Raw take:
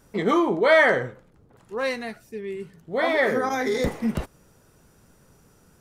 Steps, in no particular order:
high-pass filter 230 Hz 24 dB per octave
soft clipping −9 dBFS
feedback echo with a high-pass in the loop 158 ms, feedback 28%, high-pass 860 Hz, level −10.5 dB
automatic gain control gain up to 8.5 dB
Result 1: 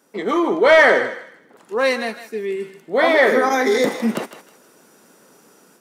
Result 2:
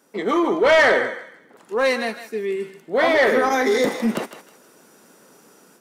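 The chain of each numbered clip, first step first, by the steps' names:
high-pass filter, then soft clipping, then automatic gain control, then feedback echo with a high-pass in the loop
feedback echo with a high-pass in the loop, then automatic gain control, then high-pass filter, then soft clipping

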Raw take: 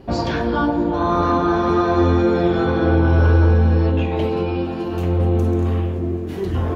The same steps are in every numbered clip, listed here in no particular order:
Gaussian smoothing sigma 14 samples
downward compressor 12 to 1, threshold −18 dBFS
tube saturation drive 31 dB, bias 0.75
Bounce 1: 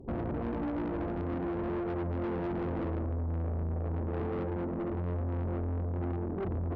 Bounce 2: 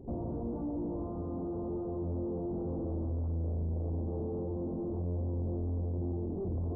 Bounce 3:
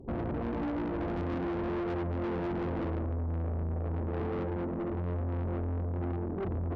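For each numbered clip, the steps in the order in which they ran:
downward compressor, then Gaussian smoothing, then tube saturation
downward compressor, then tube saturation, then Gaussian smoothing
Gaussian smoothing, then downward compressor, then tube saturation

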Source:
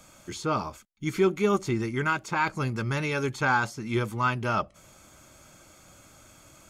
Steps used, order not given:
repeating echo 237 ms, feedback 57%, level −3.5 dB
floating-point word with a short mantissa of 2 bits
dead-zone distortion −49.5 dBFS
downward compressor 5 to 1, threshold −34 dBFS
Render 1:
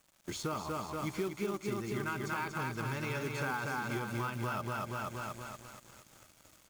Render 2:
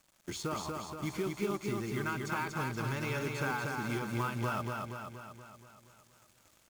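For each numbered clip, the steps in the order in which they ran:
repeating echo, then floating-point word with a short mantissa, then dead-zone distortion, then downward compressor
dead-zone distortion, then floating-point word with a short mantissa, then downward compressor, then repeating echo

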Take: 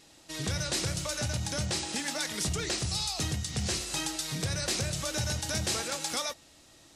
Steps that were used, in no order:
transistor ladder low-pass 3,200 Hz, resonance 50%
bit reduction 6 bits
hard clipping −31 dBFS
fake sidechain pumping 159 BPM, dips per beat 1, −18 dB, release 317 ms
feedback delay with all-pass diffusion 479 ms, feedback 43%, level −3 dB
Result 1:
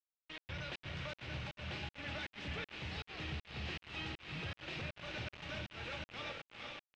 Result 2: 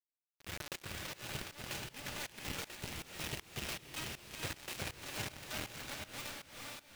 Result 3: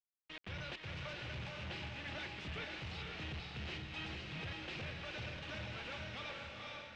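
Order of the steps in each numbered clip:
hard clipping, then feedback delay with all-pass diffusion, then fake sidechain pumping, then bit reduction, then transistor ladder low-pass
transistor ladder low-pass, then bit reduction, then feedback delay with all-pass diffusion, then hard clipping, then fake sidechain pumping
fake sidechain pumping, then bit reduction, then feedback delay with all-pass diffusion, then hard clipping, then transistor ladder low-pass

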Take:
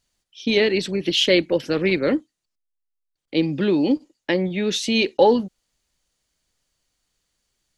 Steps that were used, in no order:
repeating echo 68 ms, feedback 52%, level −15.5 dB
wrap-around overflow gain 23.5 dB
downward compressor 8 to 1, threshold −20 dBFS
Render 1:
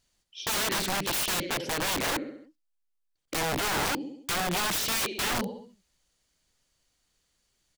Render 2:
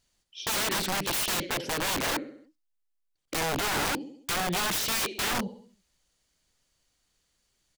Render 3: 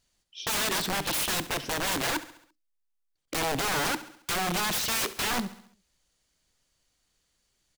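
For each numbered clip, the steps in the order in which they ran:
repeating echo, then downward compressor, then wrap-around overflow
downward compressor, then repeating echo, then wrap-around overflow
downward compressor, then wrap-around overflow, then repeating echo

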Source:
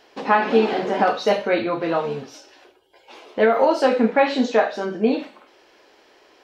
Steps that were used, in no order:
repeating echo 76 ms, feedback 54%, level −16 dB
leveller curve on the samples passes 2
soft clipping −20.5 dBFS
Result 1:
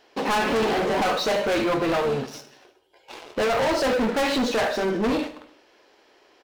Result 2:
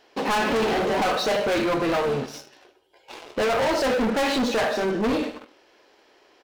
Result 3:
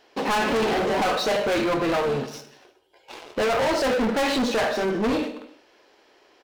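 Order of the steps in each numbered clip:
leveller curve on the samples, then soft clipping, then repeating echo
repeating echo, then leveller curve on the samples, then soft clipping
leveller curve on the samples, then repeating echo, then soft clipping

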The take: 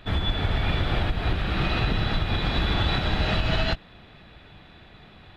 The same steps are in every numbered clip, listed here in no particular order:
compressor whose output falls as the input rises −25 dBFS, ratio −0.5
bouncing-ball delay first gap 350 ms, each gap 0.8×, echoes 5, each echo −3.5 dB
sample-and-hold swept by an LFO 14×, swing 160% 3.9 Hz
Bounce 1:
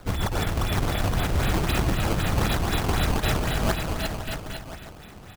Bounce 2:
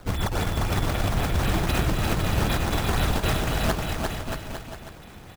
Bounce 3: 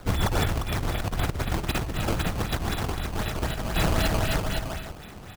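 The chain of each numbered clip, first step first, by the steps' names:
compressor whose output falls as the input rises, then bouncing-ball delay, then sample-and-hold swept by an LFO
compressor whose output falls as the input rises, then sample-and-hold swept by an LFO, then bouncing-ball delay
bouncing-ball delay, then compressor whose output falls as the input rises, then sample-and-hold swept by an LFO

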